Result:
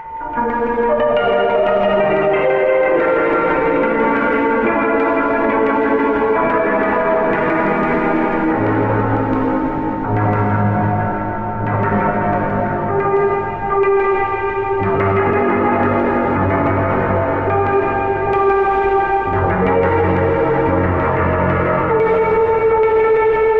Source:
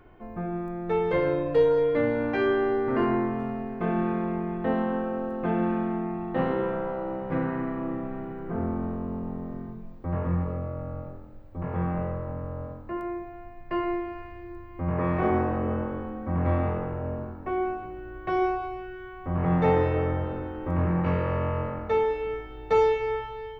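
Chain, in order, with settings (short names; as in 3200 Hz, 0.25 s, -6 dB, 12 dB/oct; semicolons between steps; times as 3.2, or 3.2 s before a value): gliding pitch shift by +5.5 st ending unshifted; steep low-pass 3900 Hz 96 dB/oct; bell 2000 Hz +7 dB 1.8 oct; LFO low-pass saw down 6 Hz 320–2500 Hz; whine 900 Hz -33 dBFS; plate-style reverb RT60 4.9 s, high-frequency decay 1×, DRR -5.5 dB; maximiser +14 dB; gain -6 dB; Opus 20 kbps 48000 Hz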